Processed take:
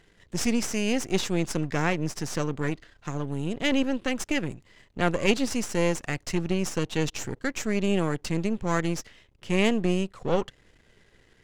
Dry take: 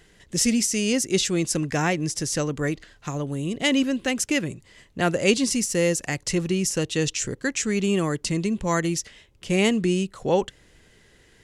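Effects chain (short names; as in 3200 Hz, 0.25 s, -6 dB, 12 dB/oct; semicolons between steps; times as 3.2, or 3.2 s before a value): half-wave gain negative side -12 dB; high shelf 6400 Hz -11 dB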